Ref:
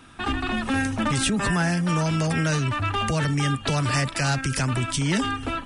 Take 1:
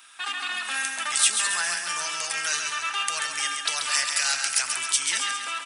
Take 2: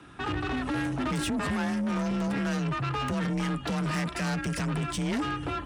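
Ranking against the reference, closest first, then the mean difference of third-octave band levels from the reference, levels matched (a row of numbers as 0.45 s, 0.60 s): 2, 1; 5.5 dB, 13.0 dB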